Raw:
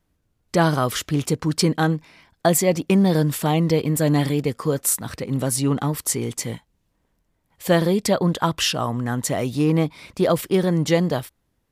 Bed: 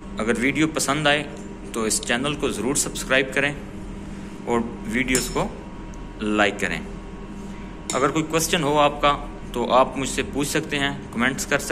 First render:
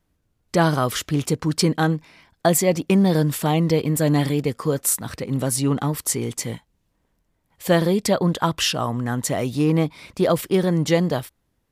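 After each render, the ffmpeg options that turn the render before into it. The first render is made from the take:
ffmpeg -i in.wav -af anull out.wav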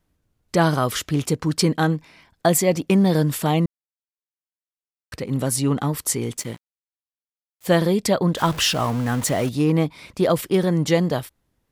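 ffmpeg -i in.wav -filter_complex "[0:a]asettb=1/sr,asplit=3[link_01][link_02][link_03];[link_01]atrim=end=6.374[link_04];[link_02]atrim=start=6.37:end=7.68,asetpts=PTS-STARTPTS,afade=type=in:duration=0.004:curve=qsin,afade=type=out:start_time=1.306:duration=0.004:curve=qsin,aeval=exprs='sgn(val(0))*max(abs(val(0))-0.0133,0)':channel_layout=same[link_05];[link_03]atrim=start=7.676[link_06];[link_04][link_05]acrossfade=duration=0.004:curve1=hsin:curve2=qsin[link_07];[link_07][link_06]acrossfade=duration=0.004:curve1=qsin:curve2=hsin,asettb=1/sr,asplit=3[link_08][link_09][link_10];[link_08]atrim=end=8.374[link_11];[link_09]atrim=start=8.37:end=9.49,asetpts=PTS-STARTPTS,afade=type=in:duration=0.004:curve=qsin,afade=type=out:start_time=1.116:duration=0.004:curve=qsin,aeval=exprs='val(0)+0.5*0.0398*sgn(val(0))':channel_layout=same[link_12];[link_10]atrim=start=9.486[link_13];[link_11][link_12]acrossfade=duration=0.004:curve1=hsin:curve2=qsin[link_14];[link_14][link_13]acrossfade=duration=0.004:curve1=qsin:curve2=hsin,asplit=3[link_15][link_16][link_17];[link_15]atrim=end=3.66,asetpts=PTS-STARTPTS,afade=type=out:start_time=3.656:duration=0.004:curve=hsin[link_18];[link_16]atrim=start=3.66:end=5.12,asetpts=PTS-STARTPTS,volume=0[link_19];[link_17]atrim=start=5.12,asetpts=PTS-STARTPTS,afade=type=in:duration=0.004:curve=hsin[link_20];[link_18][link_19][link_20]concat=n=3:v=0:a=1" out.wav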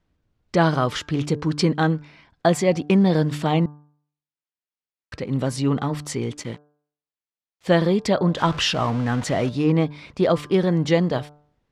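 ffmpeg -i in.wav -af "lowpass=4700,bandreject=frequency=147.7:width_type=h:width=4,bandreject=frequency=295.4:width_type=h:width=4,bandreject=frequency=443.1:width_type=h:width=4,bandreject=frequency=590.8:width_type=h:width=4,bandreject=frequency=738.5:width_type=h:width=4,bandreject=frequency=886.2:width_type=h:width=4,bandreject=frequency=1033.9:width_type=h:width=4,bandreject=frequency=1181.6:width_type=h:width=4,bandreject=frequency=1329.3:width_type=h:width=4,bandreject=frequency=1477:width_type=h:width=4,bandreject=frequency=1624.7:width_type=h:width=4" out.wav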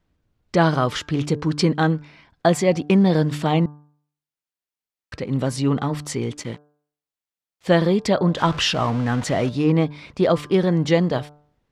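ffmpeg -i in.wav -af "volume=1dB" out.wav

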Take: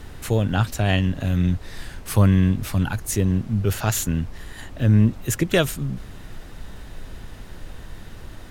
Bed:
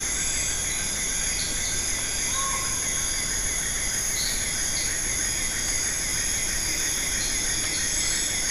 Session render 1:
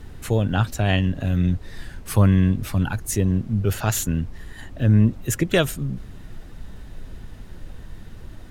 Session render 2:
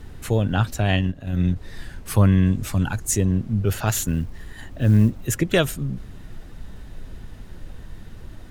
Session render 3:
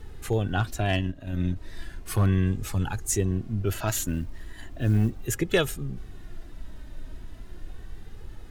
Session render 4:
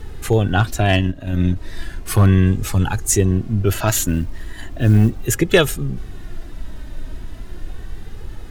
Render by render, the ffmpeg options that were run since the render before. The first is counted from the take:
ffmpeg -i in.wav -af "afftdn=noise_reduction=6:noise_floor=-40" out.wav
ffmpeg -i in.wav -filter_complex "[0:a]asplit=3[link_01][link_02][link_03];[link_01]afade=type=out:start_time=0.86:duration=0.02[link_04];[link_02]agate=range=-10dB:threshold=-21dB:ratio=16:release=100:detection=peak,afade=type=in:start_time=0.86:duration=0.02,afade=type=out:start_time=1.55:duration=0.02[link_05];[link_03]afade=type=in:start_time=1.55:duration=0.02[link_06];[link_04][link_05][link_06]amix=inputs=3:normalize=0,asettb=1/sr,asplit=3[link_07][link_08][link_09];[link_07]atrim=end=2.464[link_10];[link_08]atrim=start=2.46:end=3.26,asetpts=PTS-STARTPTS,afade=type=in:duration=0.004:curve=qsin,afade=type=out:start_time=0.796:duration=0.004:curve=qsin,equalizer=frequency=7300:width=2.1:gain=7.5[link_11];[link_09]atrim=start=3.256[link_12];[link_10][link_11]acrossfade=duration=0.004:curve1=hsin:curve2=qsin[link_13];[link_13][link_12]acrossfade=duration=0.004:curve1=qsin:curve2=hsin,asettb=1/sr,asplit=3[link_14][link_15][link_16];[link_14]atrim=end=3.874[link_17];[link_15]atrim=start=3.87:end=5.24,asetpts=PTS-STARTPTS,afade=type=in:duration=0.004:curve=qsin,afade=type=out:start_time=1.366:duration=0.004:curve=qsin,acrusher=bits=9:mode=log:mix=0:aa=0.000001[link_18];[link_16]atrim=start=5.236[link_19];[link_17][link_18]acrossfade=duration=0.004:curve1=hsin:curve2=qsin[link_20];[link_20][link_19]acrossfade=duration=0.004:curve1=qsin:curve2=hsin" out.wav
ffmpeg -i in.wav -af "volume=8dB,asoftclip=hard,volume=-8dB,flanger=delay=2.3:depth=1:regen=38:speed=0.36:shape=triangular" out.wav
ffmpeg -i in.wav -af "volume=9.5dB" out.wav

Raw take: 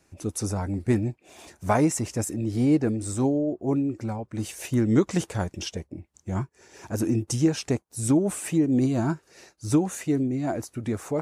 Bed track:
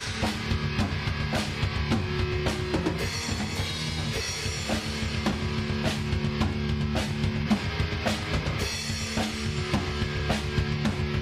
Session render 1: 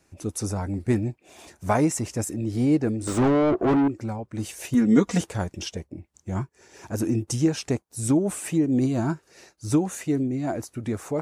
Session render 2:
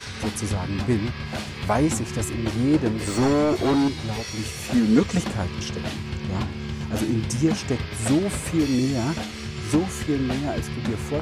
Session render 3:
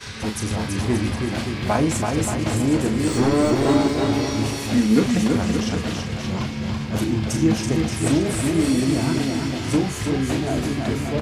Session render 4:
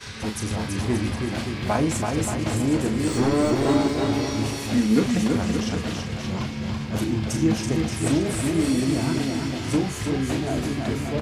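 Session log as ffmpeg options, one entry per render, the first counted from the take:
ffmpeg -i in.wav -filter_complex "[0:a]asettb=1/sr,asplit=3[link_01][link_02][link_03];[link_01]atrim=end=3.074[link_04];[link_02]atrim=start=3.07:end=3.88,asetpts=PTS-STARTPTS,afade=type=in:duration=0.004:curve=qsin,afade=type=out:start_time=0.806:duration=0.004:curve=qsin,asplit=2[link_05][link_06];[link_06]highpass=frequency=720:poles=1,volume=30dB,asoftclip=type=tanh:threshold=-13dB[link_07];[link_05][link_07]amix=inputs=2:normalize=0,lowpass=frequency=1300:poles=1,volume=-6dB[link_08];[link_03]atrim=start=3.876[link_09];[link_04][link_08]acrossfade=duration=0.004:curve1=hsin:curve2=qsin[link_10];[link_10][link_09]acrossfade=duration=0.004:curve1=qsin:curve2=hsin,asettb=1/sr,asplit=3[link_11][link_12][link_13];[link_11]atrim=end=4.744[link_14];[link_12]atrim=start=4.74:end=5.21,asetpts=PTS-STARTPTS,afade=type=in:duration=0.004:curve=qsin,afade=type=out:start_time=0.466:duration=0.004:curve=qsin,aecho=1:1:4.2:0.98,atrim=end_sample=20727[link_15];[link_13]atrim=start=5.206[link_16];[link_14][link_15]acrossfade=duration=0.004:curve1=hsin:curve2=qsin[link_17];[link_17][link_16]acrossfade=duration=0.004:curve1=qsin:curve2=hsin" out.wav
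ffmpeg -i in.wav -i bed.wav -filter_complex "[1:a]volume=-3dB[link_01];[0:a][link_01]amix=inputs=2:normalize=0" out.wav
ffmpeg -i in.wav -filter_complex "[0:a]asplit=2[link_01][link_02];[link_02]adelay=37,volume=-7.5dB[link_03];[link_01][link_03]amix=inputs=2:normalize=0,aecho=1:1:330|577.5|763.1|902.3|1007:0.631|0.398|0.251|0.158|0.1" out.wav
ffmpeg -i in.wav -af "volume=-2.5dB" out.wav

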